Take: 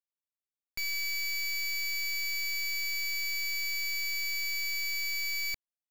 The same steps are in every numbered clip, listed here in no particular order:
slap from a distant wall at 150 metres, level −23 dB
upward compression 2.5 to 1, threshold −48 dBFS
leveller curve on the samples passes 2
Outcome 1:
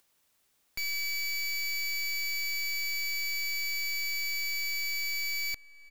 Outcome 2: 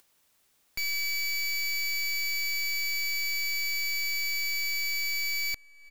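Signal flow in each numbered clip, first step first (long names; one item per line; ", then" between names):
slap from a distant wall, then leveller curve on the samples, then upward compression
slap from a distant wall, then upward compression, then leveller curve on the samples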